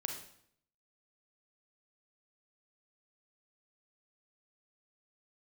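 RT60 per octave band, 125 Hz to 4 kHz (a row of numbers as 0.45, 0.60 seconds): 0.80, 0.75, 0.65, 0.65, 0.60, 0.60 seconds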